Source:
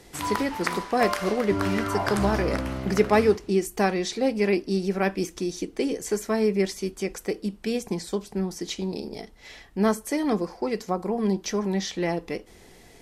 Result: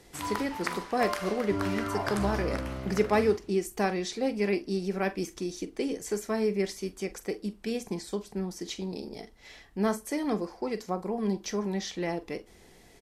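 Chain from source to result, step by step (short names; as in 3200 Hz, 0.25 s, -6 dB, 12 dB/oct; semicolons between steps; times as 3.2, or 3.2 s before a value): doubler 44 ms -14 dB; gain -5 dB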